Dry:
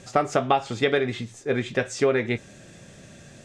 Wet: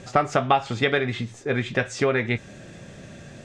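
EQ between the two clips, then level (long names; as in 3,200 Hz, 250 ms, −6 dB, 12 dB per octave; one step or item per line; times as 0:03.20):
low-pass filter 3,400 Hz 6 dB per octave
dynamic equaliser 390 Hz, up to −7 dB, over −34 dBFS, Q 0.72
+5.0 dB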